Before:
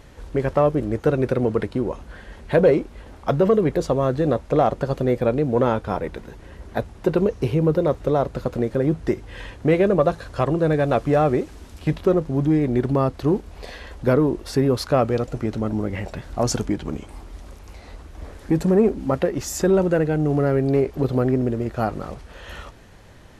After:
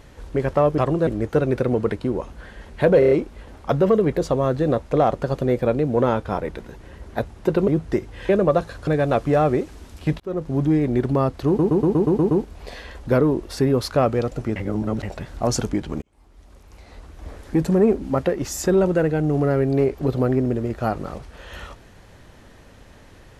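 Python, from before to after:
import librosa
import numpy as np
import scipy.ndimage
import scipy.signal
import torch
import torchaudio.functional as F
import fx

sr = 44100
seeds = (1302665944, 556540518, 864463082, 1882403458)

y = fx.edit(x, sr, fx.stutter(start_s=2.7, slice_s=0.03, count=5),
    fx.cut(start_s=7.27, length_s=1.56),
    fx.cut(start_s=9.44, length_s=0.36),
    fx.move(start_s=10.38, length_s=0.29, to_s=0.78),
    fx.fade_in_span(start_s=12.0, length_s=0.33),
    fx.stutter(start_s=13.27, slice_s=0.12, count=8),
    fx.reverse_span(start_s=15.52, length_s=0.47),
    fx.fade_in_span(start_s=16.98, length_s=1.26), tone=tone)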